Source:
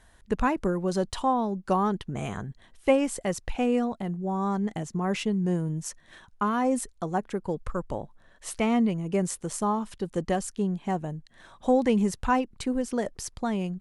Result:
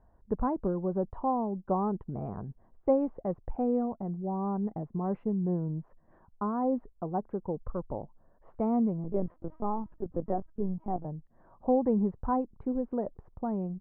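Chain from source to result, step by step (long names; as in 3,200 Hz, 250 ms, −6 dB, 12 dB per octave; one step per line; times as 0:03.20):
low-pass filter 1,000 Hz 24 dB per octave
0:09.04–0:11.05: linear-prediction vocoder at 8 kHz pitch kept
level −3.5 dB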